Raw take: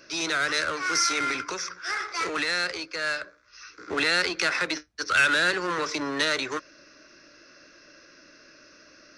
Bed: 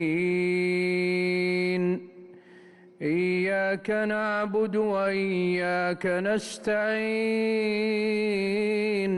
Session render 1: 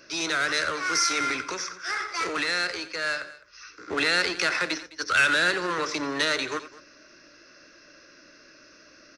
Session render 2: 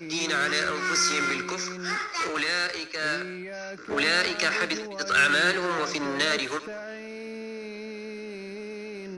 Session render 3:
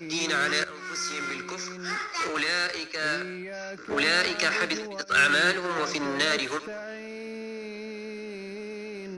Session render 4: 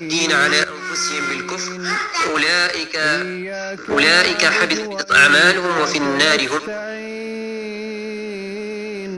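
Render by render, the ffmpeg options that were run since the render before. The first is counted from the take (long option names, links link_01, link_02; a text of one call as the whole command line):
ffmpeg -i in.wav -af "aecho=1:1:88|209:0.188|0.112" out.wav
ffmpeg -i in.wav -i bed.wav -filter_complex "[1:a]volume=-12dB[link_01];[0:a][link_01]amix=inputs=2:normalize=0" out.wav
ffmpeg -i in.wav -filter_complex "[0:a]asettb=1/sr,asplit=3[link_01][link_02][link_03];[link_01]atrim=end=5.014[link_04];[link_02]atrim=start=5.01:end=5.76,asetpts=PTS-STARTPTS,afade=type=in:duration=0.004:curve=qsin,afade=type=out:start_time=0.746:duration=0.004:curve=qsin,agate=range=-33dB:threshold=-25dB:ratio=3:release=100:detection=peak[link_05];[link_03]atrim=start=5.756[link_06];[link_04][link_05]acrossfade=duration=0.004:curve1=hsin:curve2=qsin[link_07];[link_07][link_06]acrossfade=duration=0.004:curve1=qsin:curve2=hsin,asplit=2[link_08][link_09];[link_08]atrim=end=0.64,asetpts=PTS-STARTPTS,afade=type=out:start_time=0.636:duration=0.004:curve=hsin:silence=0.223872[link_10];[link_09]atrim=start=0.64,asetpts=PTS-STARTPTS,afade=type=in:duration=1.74:silence=0.223872[link_11];[link_10][link_11]concat=n=2:v=0:a=1" out.wav
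ffmpeg -i in.wav -af "volume=10.5dB,alimiter=limit=-1dB:level=0:latency=1" out.wav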